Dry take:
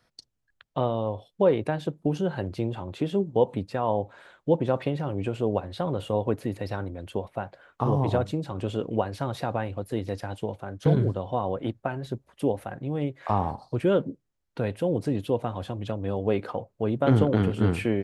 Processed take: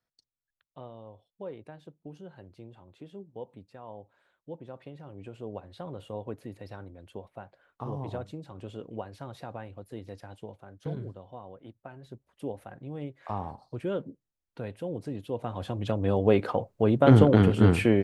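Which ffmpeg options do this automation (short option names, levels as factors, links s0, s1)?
-af "volume=3.55,afade=t=in:st=4.75:d=1.06:silence=0.421697,afade=t=out:st=10.46:d=1.16:silence=0.421697,afade=t=in:st=11.62:d=1.08:silence=0.316228,afade=t=in:st=15.29:d=0.76:silence=0.237137"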